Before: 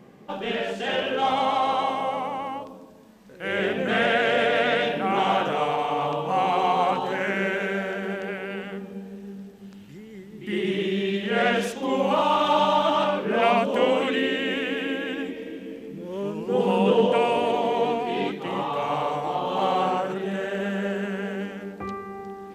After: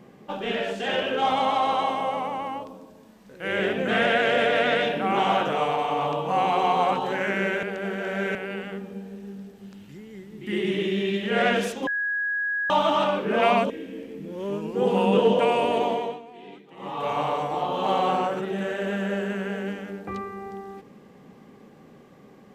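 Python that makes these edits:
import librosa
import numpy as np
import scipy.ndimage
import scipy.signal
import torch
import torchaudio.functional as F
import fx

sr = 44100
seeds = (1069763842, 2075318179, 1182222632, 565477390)

y = fx.edit(x, sr, fx.reverse_span(start_s=7.63, length_s=0.72),
    fx.bleep(start_s=11.87, length_s=0.83, hz=1660.0, db=-23.5),
    fx.cut(start_s=13.7, length_s=1.73),
    fx.fade_down_up(start_s=17.6, length_s=1.21, db=-17.5, fade_s=0.32), tone=tone)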